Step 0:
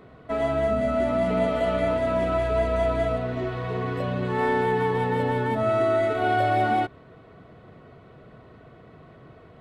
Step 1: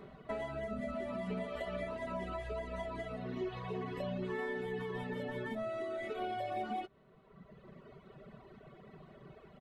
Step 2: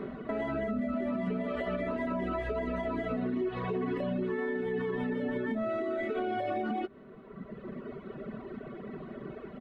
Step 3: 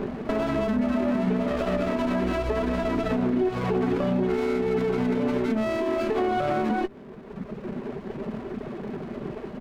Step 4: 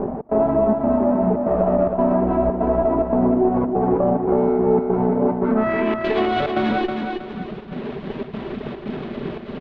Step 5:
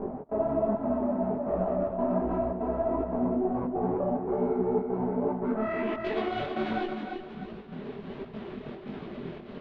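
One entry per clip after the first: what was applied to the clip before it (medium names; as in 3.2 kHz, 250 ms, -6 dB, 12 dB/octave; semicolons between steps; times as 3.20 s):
reverb removal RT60 1.6 s; compression, threshold -33 dBFS, peak gain reduction 11.5 dB; comb 5.1 ms, depth 65%; trim -4 dB
FFT filter 160 Hz 0 dB, 240 Hz +12 dB, 830 Hz 0 dB, 1.5 kHz +5 dB, 8.1 kHz -10 dB; compression 4:1, threshold -35 dBFS, peak gain reduction 8 dB; peak limiter -32 dBFS, peak gain reduction 5 dB; trim +7.5 dB
sliding maximum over 17 samples; trim +8.5 dB
low-pass sweep 800 Hz -> 3.6 kHz, 5.34–6.04 s; trance gate "xx.xxxx.xxx" 144 bpm -24 dB; feedback delay 319 ms, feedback 36%, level -5 dB; trim +4 dB
detune thickener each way 46 cents; trim -6.5 dB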